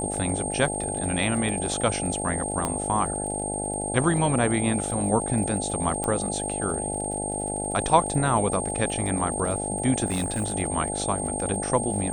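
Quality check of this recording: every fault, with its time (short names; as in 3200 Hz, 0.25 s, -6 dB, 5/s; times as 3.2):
buzz 50 Hz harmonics 17 -32 dBFS
crackle 60/s -35 dBFS
tone 8600 Hz -30 dBFS
2.65 pop -11 dBFS
6.04 pop -13 dBFS
10.06–10.54 clipped -22 dBFS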